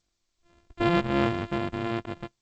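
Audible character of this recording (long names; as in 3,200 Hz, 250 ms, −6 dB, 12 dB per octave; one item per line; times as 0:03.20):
a buzz of ramps at a fixed pitch in blocks of 128 samples
G.722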